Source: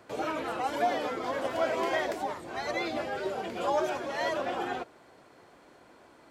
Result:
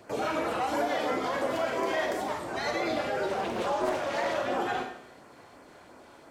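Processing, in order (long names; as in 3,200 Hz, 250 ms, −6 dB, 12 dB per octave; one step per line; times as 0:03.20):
brickwall limiter −25 dBFS, peak gain reduction 8 dB
auto-filter notch sine 2.9 Hz 250–3,900 Hz
four-comb reverb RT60 0.71 s, combs from 27 ms, DRR 3.5 dB
0:03.28–0:04.37: highs frequency-modulated by the lows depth 0.4 ms
level +4 dB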